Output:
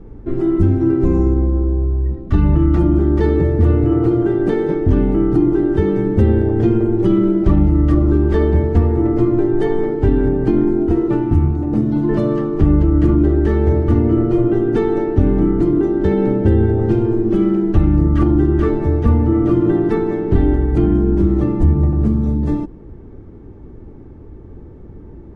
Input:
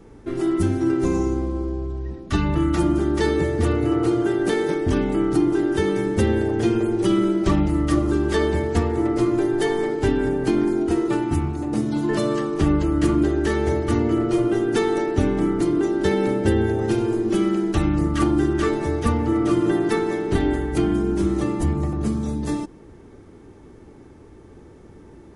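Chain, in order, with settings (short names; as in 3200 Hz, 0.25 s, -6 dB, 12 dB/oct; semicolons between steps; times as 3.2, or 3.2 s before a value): LPF 2600 Hz 6 dB/oct; tilt -3 dB/oct; in parallel at +2.5 dB: limiter -6 dBFS, peak gain reduction 7.5 dB; on the sum: gain -7 dB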